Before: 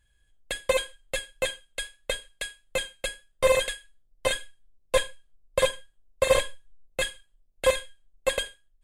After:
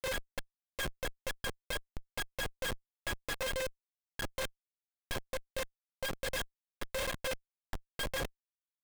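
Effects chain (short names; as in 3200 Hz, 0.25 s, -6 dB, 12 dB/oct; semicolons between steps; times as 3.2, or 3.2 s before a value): slices in reverse order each 0.131 s, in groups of 6; Schmitt trigger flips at -32.5 dBFS; gain -4.5 dB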